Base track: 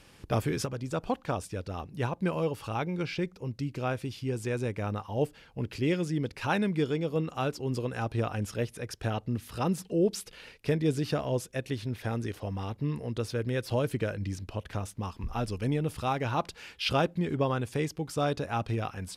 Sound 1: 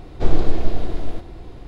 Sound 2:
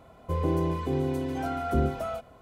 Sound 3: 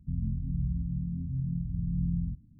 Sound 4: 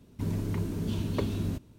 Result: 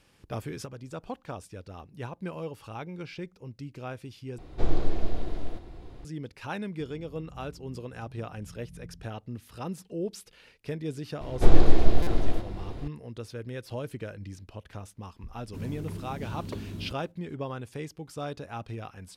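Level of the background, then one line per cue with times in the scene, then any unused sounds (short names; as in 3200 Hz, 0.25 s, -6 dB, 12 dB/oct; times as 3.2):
base track -7 dB
4.38 replace with 1 -7.5 dB
6.72 add 3 -15.5 dB + noise-modulated level
11.21 add 1 + stuck buffer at 0.81, samples 256
15.34 add 4 -7 dB
not used: 2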